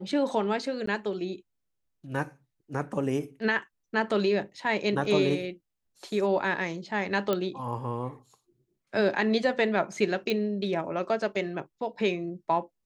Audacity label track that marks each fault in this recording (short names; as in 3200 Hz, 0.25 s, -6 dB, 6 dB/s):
0.860000	0.870000	gap 14 ms
5.050000	5.050000	gap 2.4 ms
7.330000	7.330000	pop -14 dBFS
10.300000	10.300000	pop -16 dBFS